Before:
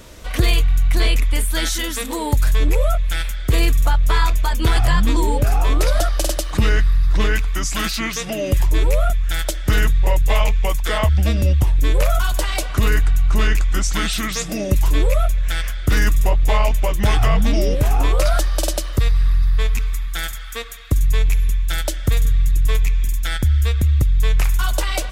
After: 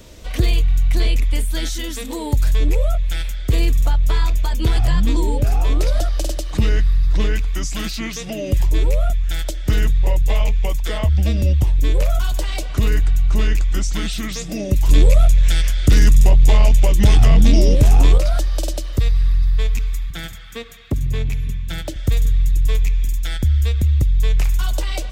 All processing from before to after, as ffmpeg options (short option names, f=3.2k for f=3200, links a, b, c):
-filter_complex "[0:a]asettb=1/sr,asplit=3[a][b][c];[a]atrim=end=14.894[d];[b]atrim=start=14.89:end=18.18,asetpts=PTS-STARTPTS,afade=t=in:d=0.004:c=qsin,afade=t=out:st=3.286:d=0.004:c=qsin,lowpass=11k,highshelf=f=3.5k:g=8,acontrast=86[e];[c]atrim=start=18.176[f];[d][e]acrossfade=d=0.004:c1=hsin:c2=qsin[g];[g][f]acrossfade=d=0.004:c1=qsin:c2=hsin,asettb=1/sr,asplit=3[h][i][j];[h]atrim=end=20.104[k];[i]atrim=start=20.1:end=21.96,asetpts=PTS-STARTPTS,afade=t=in:d=0.004:c=qsin,afade=t=out:st=1.856:d=0.004:c=qsin,highpass=130,bass=f=250:g=13,treble=f=4k:g=-6,asoftclip=type=hard:threshold=-14.5dB[l];[j]atrim=start=21.956[m];[k][l]acrossfade=d=0.004:c1=hsin:c2=qsin[n];[n][m]acrossfade=d=0.004:c1=qsin:c2=hsin,equalizer=f=1.3k:t=o:w=1.4:g=-7,acrossover=split=390[o][p];[p]acompressor=threshold=-28dB:ratio=2[q];[o][q]amix=inputs=2:normalize=0,equalizer=f=11k:t=o:w=0.64:g=-6.5"